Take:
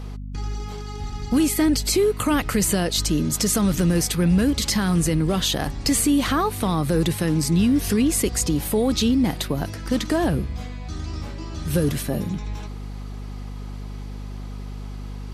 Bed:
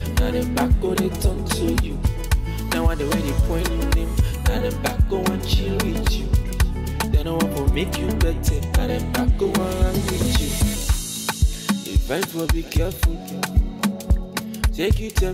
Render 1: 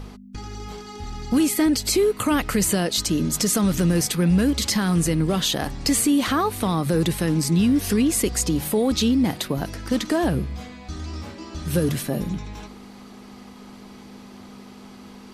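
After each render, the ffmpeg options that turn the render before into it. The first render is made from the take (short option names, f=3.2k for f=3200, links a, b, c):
-af "bandreject=f=50:t=h:w=4,bandreject=f=100:t=h:w=4,bandreject=f=150:t=h:w=4"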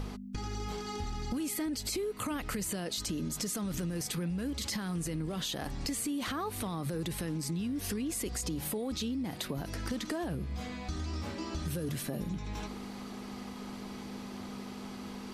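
-af "alimiter=limit=-17dB:level=0:latency=1:release=26,acompressor=threshold=-33dB:ratio=6"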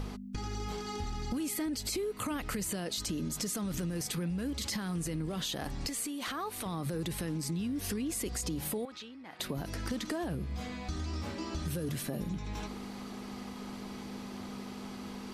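-filter_complex "[0:a]asettb=1/sr,asplit=3[a][b][c];[a]atrim=end=5.884[d];[b]atrim=start=5.88:end=6.66,asetpts=PTS-STARTPTS,afade=t=in:d=0.004:c=qsin,afade=t=out:st=0.776:d=0.004:c=qsin,equalizer=f=80:w=0.38:g=-12[e];[c]atrim=start=6.656[f];[d][e]acrossfade=d=0.004:c1=hsin:c2=qsin[g];[g][f]acrossfade=d=0.004:c1=qsin:c2=hsin,asettb=1/sr,asplit=3[h][i][j];[h]atrim=end=8.854[k];[i]atrim=start=8.85:end=9.4,asetpts=PTS-STARTPTS,afade=t=in:d=0.004:c=qsin,afade=t=out:st=0.546:d=0.004:c=qsin,bandpass=f=1.5k:t=q:w=1[l];[j]atrim=start=9.396[m];[k][l]acrossfade=d=0.004:c1=hsin:c2=qsin[n];[n][m]acrossfade=d=0.004:c1=qsin:c2=hsin"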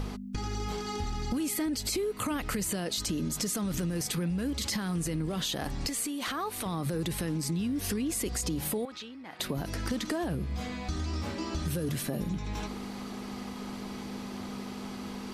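-af "volume=3.5dB"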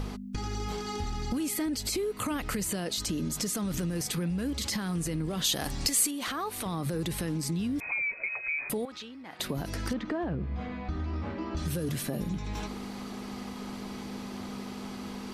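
-filter_complex "[0:a]asettb=1/sr,asplit=3[a][b][c];[a]atrim=end=5.444[d];[b]atrim=start=5.44:end=6.11,asetpts=PTS-STARTPTS,afade=t=in:d=0.004:c=qsin,afade=t=out:st=0.666:d=0.004:c=qsin,highshelf=f=3.4k:g=9.5[e];[c]atrim=start=6.106[f];[d][e]acrossfade=d=0.004:c1=hsin:c2=qsin[g];[g][f]acrossfade=d=0.004:c1=qsin:c2=hsin,asettb=1/sr,asplit=3[h][i][j];[h]atrim=end=7.804[k];[i]atrim=start=7.8:end=8.7,asetpts=PTS-STARTPTS,afade=t=in:d=0.004:c=qsin,afade=t=out:st=0.896:d=0.004:c=qsin,lowpass=f=2.2k:t=q:w=0.5098,lowpass=f=2.2k:t=q:w=0.6013,lowpass=f=2.2k:t=q:w=0.9,lowpass=f=2.2k:t=q:w=2.563,afreqshift=-2600[l];[j]atrim=start=8.696[m];[k][l]acrossfade=d=0.004:c1=hsin:c2=qsin[n];[n][m]acrossfade=d=0.004:c1=qsin:c2=hsin,asettb=1/sr,asplit=3[o][p][q];[o]atrim=end=9.934[r];[p]atrim=start=9.93:end=11.57,asetpts=PTS-STARTPTS,afade=t=in:d=0.004:c=qsin,afade=t=out:st=1.636:d=0.004:c=qsin,lowpass=2.1k[s];[q]atrim=start=11.566[t];[r][s]acrossfade=d=0.004:c1=hsin:c2=qsin[u];[u][t]acrossfade=d=0.004:c1=qsin:c2=hsin"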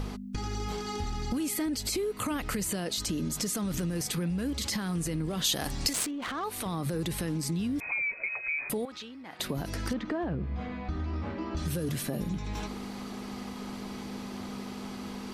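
-filter_complex "[0:a]asettb=1/sr,asplit=3[a][b][c];[a]atrim=end=5.934[d];[b]atrim=start=5.93:end=6.44,asetpts=PTS-STARTPTS,afade=t=in:d=0.004:c=qsin,afade=t=out:st=0.506:d=0.004:c=qsin,adynamicsmooth=sensitivity=6:basefreq=820[e];[c]atrim=start=6.436[f];[d][e]acrossfade=d=0.004:c1=hsin:c2=qsin[g];[g][f]acrossfade=d=0.004:c1=qsin:c2=hsin"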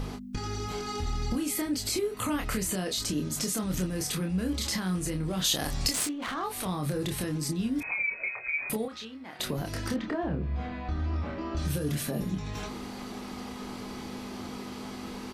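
-filter_complex "[0:a]asplit=2[a][b];[b]adelay=27,volume=-4.5dB[c];[a][c]amix=inputs=2:normalize=0"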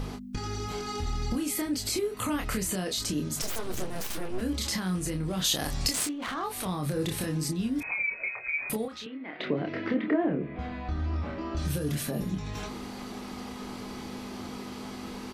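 -filter_complex "[0:a]asettb=1/sr,asplit=3[a][b][c];[a]atrim=end=3.424[d];[b]atrim=start=3.42:end=4.41,asetpts=PTS-STARTPTS,afade=t=in:d=0.004:c=qsin,afade=t=out:st=0.986:d=0.004:c=qsin,aeval=exprs='abs(val(0))':c=same[e];[c]atrim=start=4.406[f];[d][e]acrossfade=d=0.004:c1=hsin:c2=qsin[g];[g][f]acrossfade=d=0.004:c1=qsin:c2=hsin,asettb=1/sr,asplit=3[h][i][j];[h]atrim=end=6.944[k];[i]atrim=start=6.94:end=7.49,asetpts=PTS-STARTPTS,afade=t=in:d=0.004:c=qsin,afade=t=out:st=0.546:d=0.004:c=qsin,asplit=2[l][m];[m]adelay=31,volume=-7dB[n];[l][n]amix=inputs=2:normalize=0,atrim=end_sample=24255[o];[j]atrim=start=7.486[p];[k][o]acrossfade=d=0.004:c1=hsin:c2=qsin[q];[q][p]acrossfade=d=0.004:c1=qsin:c2=hsin,asettb=1/sr,asplit=3[r][s][t];[r]atrim=end=9.064[u];[s]atrim=start=9.06:end=10.59,asetpts=PTS-STARTPTS,afade=t=in:d=0.004:c=qsin,afade=t=out:st=1.526:d=0.004:c=qsin,highpass=f=140:w=0.5412,highpass=f=140:w=1.3066,equalizer=f=300:t=q:w=4:g=8,equalizer=f=430:t=q:w=4:g=7,equalizer=f=620:t=q:w=4:g=4,equalizer=f=880:t=q:w=4:g=-3,equalizer=f=2.1k:t=q:w=4:g=8,lowpass=f=3.2k:w=0.5412,lowpass=f=3.2k:w=1.3066[v];[t]atrim=start=10.586[w];[u][v]acrossfade=d=0.004:c1=hsin:c2=qsin[x];[x][w]acrossfade=d=0.004:c1=qsin:c2=hsin"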